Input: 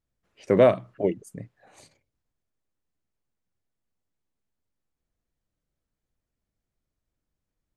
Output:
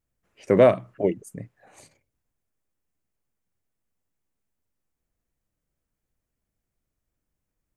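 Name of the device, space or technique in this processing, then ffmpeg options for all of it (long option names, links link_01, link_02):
exciter from parts: -filter_complex "[0:a]asplit=2[link_01][link_02];[link_02]highpass=3600,asoftclip=type=tanh:threshold=-38dB,highpass=frequency=2200:width=0.5412,highpass=frequency=2200:width=1.3066,volume=-6dB[link_03];[link_01][link_03]amix=inputs=2:normalize=0,volume=1.5dB"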